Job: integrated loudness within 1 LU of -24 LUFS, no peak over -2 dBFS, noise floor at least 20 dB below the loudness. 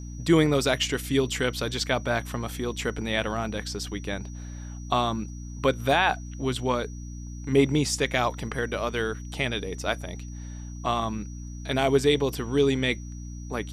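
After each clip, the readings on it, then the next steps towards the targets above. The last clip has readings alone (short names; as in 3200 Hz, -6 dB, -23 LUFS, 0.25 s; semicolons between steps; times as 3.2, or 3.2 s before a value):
hum 60 Hz; harmonics up to 300 Hz; hum level -35 dBFS; steady tone 5800 Hz; tone level -50 dBFS; loudness -26.5 LUFS; peak -8.5 dBFS; loudness target -24.0 LUFS
-> de-hum 60 Hz, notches 5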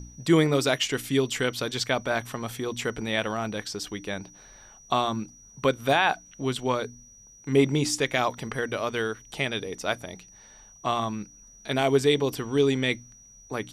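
hum none; steady tone 5800 Hz; tone level -50 dBFS
-> notch 5800 Hz, Q 30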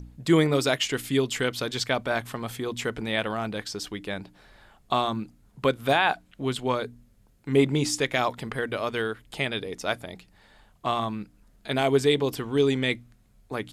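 steady tone none; loudness -27.0 LUFS; peak -8.5 dBFS; loudness target -24.0 LUFS
-> gain +3 dB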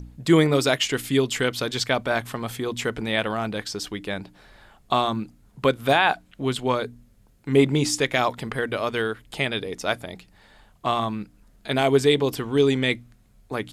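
loudness -24.0 LUFS; peak -5.5 dBFS; noise floor -57 dBFS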